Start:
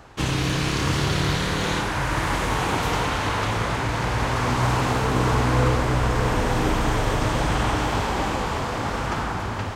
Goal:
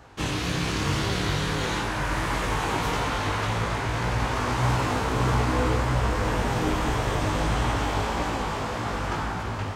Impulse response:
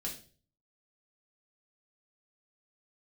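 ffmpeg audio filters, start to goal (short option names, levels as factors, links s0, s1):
-af "flanger=delay=17:depth=2.8:speed=1.7"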